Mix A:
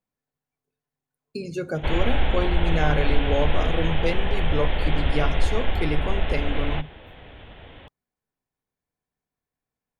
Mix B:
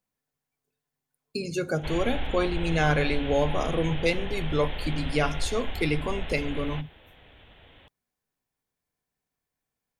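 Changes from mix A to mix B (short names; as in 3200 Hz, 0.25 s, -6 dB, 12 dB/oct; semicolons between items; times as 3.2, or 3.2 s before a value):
background -10.5 dB; master: add high shelf 2300 Hz +8 dB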